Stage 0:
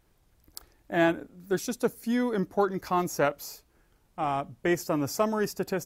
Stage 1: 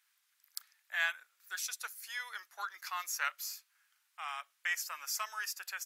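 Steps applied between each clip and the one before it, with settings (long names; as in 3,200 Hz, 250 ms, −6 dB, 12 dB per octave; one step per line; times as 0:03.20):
high-pass filter 1,400 Hz 24 dB per octave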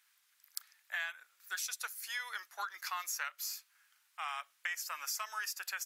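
downward compressor 10 to 1, threshold −38 dBFS, peak gain reduction 11.5 dB
level +3.5 dB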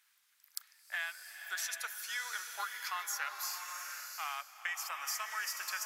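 slow-attack reverb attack 730 ms, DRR 4 dB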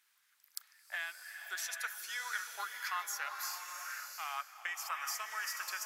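auto-filter bell 1.9 Hz 300–1,800 Hz +7 dB
level −2 dB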